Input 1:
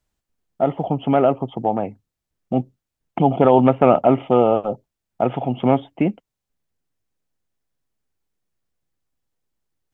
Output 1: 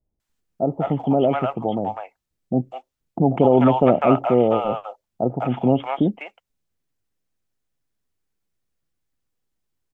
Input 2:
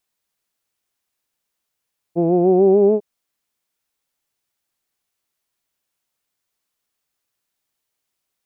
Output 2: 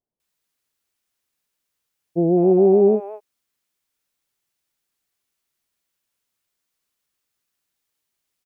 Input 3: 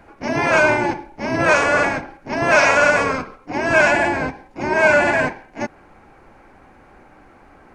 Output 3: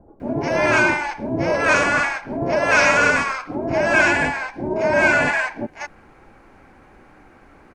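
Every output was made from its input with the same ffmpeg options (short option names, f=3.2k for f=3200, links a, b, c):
-filter_complex "[0:a]acrossover=split=750[a][b];[b]adelay=200[c];[a][c]amix=inputs=2:normalize=0"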